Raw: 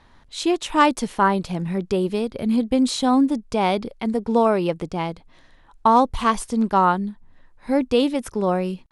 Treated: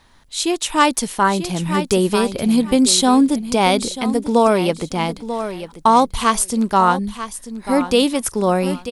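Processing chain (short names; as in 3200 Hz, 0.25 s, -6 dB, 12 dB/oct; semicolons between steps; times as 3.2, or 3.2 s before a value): high shelf 2800 Hz +7 dB; on a send: feedback echo 0.94 s, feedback 20%, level -12.5 dB; on the sum: AGC gain up to 8 dB; high shelf 8700 Hz +11.5 dB; gain -1 dB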